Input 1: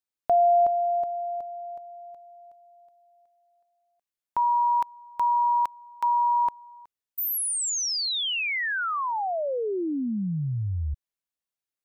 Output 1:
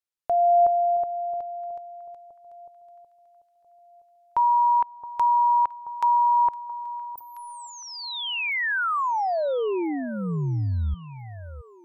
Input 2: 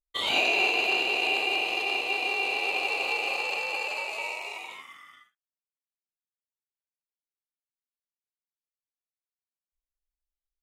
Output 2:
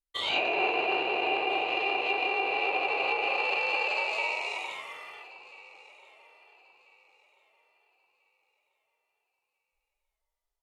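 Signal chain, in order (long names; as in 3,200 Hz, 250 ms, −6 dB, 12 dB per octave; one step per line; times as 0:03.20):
parametric band 230 Hz −7.5 dB 0.63 octaves
automatic gain control gain up to 6.5 dB
treble cut that deepens with the level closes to 1,700 Hz, closed at −17.5 dBFS
on a send: delay that swaps between a low-pass and a high-pass 670 ms, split 1,100 Hz, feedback 53%, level −14 dB
on the sum: level −3 dB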